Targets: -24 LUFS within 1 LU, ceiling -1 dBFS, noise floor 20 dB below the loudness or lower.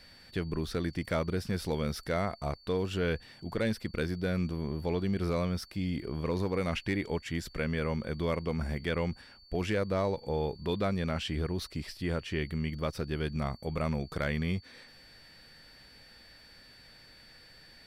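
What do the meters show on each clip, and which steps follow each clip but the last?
clipped samples 0.3%; clipping level -22.0 dBFS; steady tone 4.5 kHz; tone level -56 dBFS; loudness -33.5 LUFS; peak level -22.0 dBFS; loudness target -24.0 LUFS
-> clip repair -22 dBFS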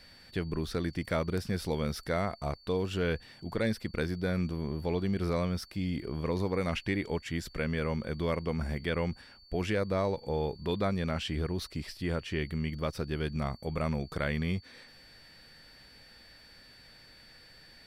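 clipped samples 0.0%; steady tone 4.5 kHz; tone level -56 dBFS
-> band-stop 4.5 kHz, Q 30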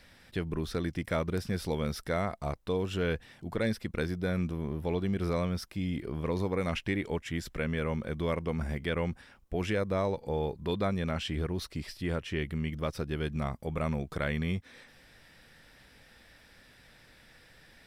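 steady tone not found; loudness -33.5 LUFS; peak level -17.0 dBFS; loudness target -24.0 LUFS
-> trim +9.5 dB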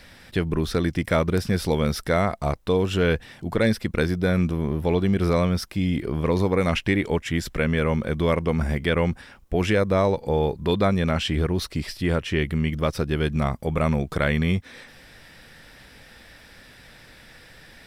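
loudness -24.0 LUFS; peak level -7.5 dBFS; noise floor -49 dBFS

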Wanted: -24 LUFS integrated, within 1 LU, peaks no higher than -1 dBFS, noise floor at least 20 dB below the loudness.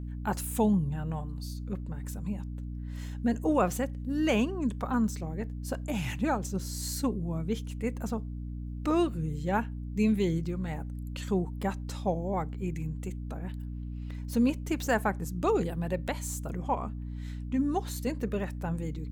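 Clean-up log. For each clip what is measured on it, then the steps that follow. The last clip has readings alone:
hum 60 Hz; highest harmonic 300 Hz; hum level -35 dBFS; loudness -32.0 LUFS; peak level -14.0 dBFS; loudness target -24.0 LUFS
-> hum notches 60/120/180/240/300 Hz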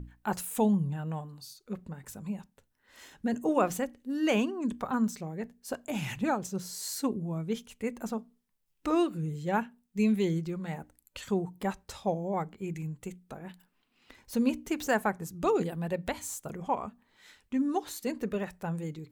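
hum not found; loudness -32.5 LUFS; peak level -13.0 dBFS; loudness target -24.0 LUFS
-> trim +8.5 dB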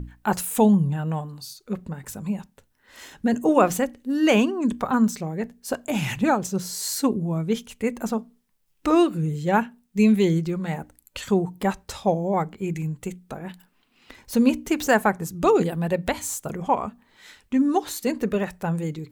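loudness -24.0 LUFS; peak level -4.5 dBFS; noise floor -66 dBFS

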